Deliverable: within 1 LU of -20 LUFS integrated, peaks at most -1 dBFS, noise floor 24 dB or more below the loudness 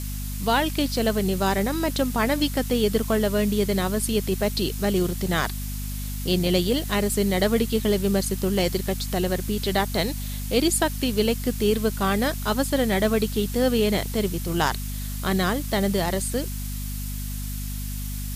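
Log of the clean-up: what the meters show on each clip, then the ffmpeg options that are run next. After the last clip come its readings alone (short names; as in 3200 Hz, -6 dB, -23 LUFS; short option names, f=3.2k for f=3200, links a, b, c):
hum 50 Hz; harmonics up to 250 Hz; hum level -28 dBFS; noise floor -30 dBFS; noise floor target -49 dBFS; loudness -24.5 LUFS; peak -8.5 dBFS; loudness target -20.0 LUFS
-> -af "bandreject=f=50:t=h:w=6,bandreject=f=100:t=h:w=6,bandreject=f=150:t=h:w=6,bandreject=f=200:t=h:w=6,bandreject=f=250:t=h:w=6"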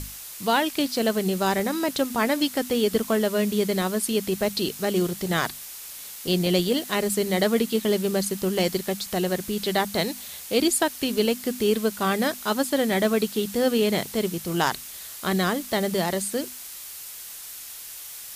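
hum none; noise floor -39 dBFS; noise floor target -49 dBFS
-> -af "afftdn=nr=10:nf=-39"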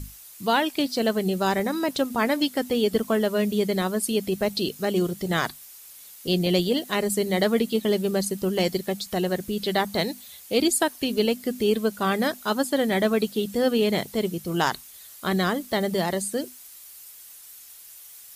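noise floor -46 dBFS; noise floor target -49 dBFS
-> -af "afftdn=nr=6:nf=-46"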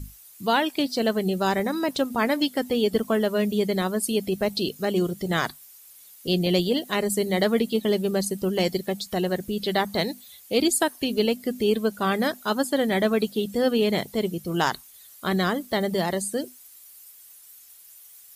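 noise floor -50 dBFS; loudness -25.0 LUFS; peak -9.5 dBFS; loudness target -20.0 LUFS
-> -af "volume=5dB"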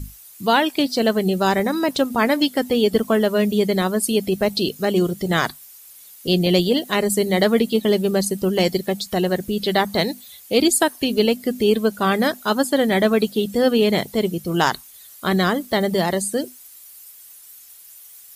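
loudness -20.0 LUFS; peak -4.5 dBFS; noise floor -45 dBFS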